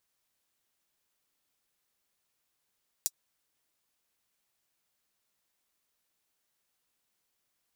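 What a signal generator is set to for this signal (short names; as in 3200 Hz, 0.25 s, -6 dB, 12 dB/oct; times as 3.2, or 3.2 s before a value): closed hi-hat, high-pass 5900 Hz, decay 0.05 s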